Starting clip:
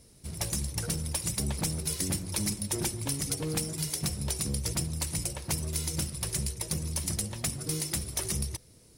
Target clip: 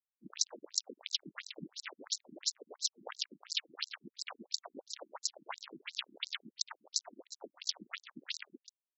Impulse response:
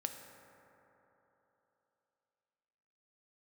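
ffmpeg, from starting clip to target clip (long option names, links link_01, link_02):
-filter_complex "[0:a]lowpass=11000,highshelf=frequency=2400:width_type=q:width=3:gain=7.5,acompressor=threshold=-36dB:ratio=4,acrusher=bits=4:mix=0:aa=0.000001,aecho=1:1:133:0.15,asplit=3[link_01][link_02][link_03];[link_02]asetrate=52444,aresample=44100,atempo=0.840896,volume=-17dB[link_04];[link_03]asetrate=58866,aresample=44100,atempo=0.749154,volume=-14dB[link_05];[link_01][link_04][link_05]amix=inputs=3:normalize=0,afftfilt=real='re*between(b*sr/1024,240*pow(5600/240,0.5+0.5*sin(2*PI*2.9*pts/sr))/1.41,240*pow(5600/240,0.5+0.5*sin(2*PI*2.9*pts/sr))*1.41)':imag='im*between(b*sr/1024,240*pow(5600/240,0.5+0.5*sin(2*PI*2.9*pts/sr))/1.41,240*pow(5600/240,0.5+0.5*sin(2*PI*2.9*pts/sr))*1.41)':win_size=1024:overlap=0.75,volume=8.5dB"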